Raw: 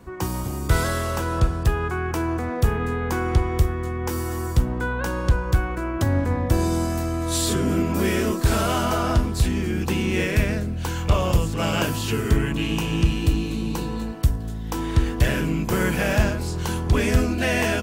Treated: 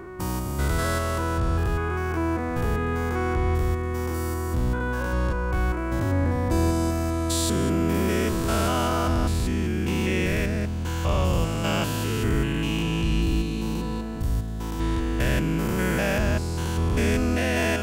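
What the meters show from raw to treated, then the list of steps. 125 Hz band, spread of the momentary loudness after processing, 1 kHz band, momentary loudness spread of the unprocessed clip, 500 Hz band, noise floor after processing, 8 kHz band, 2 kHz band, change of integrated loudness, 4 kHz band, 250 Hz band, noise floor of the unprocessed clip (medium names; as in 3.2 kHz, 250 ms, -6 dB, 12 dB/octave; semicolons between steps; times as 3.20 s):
-2.5 dB, 5 LU, -1.5 dB, 6 LU, -1.5 dB, -29 dBFS, -2.5 dB, -2.0 dB, -2.0 dB, -2.0 dB, -1.0 dB, -29 dBFS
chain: spectrogram pixelated in time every 200 ms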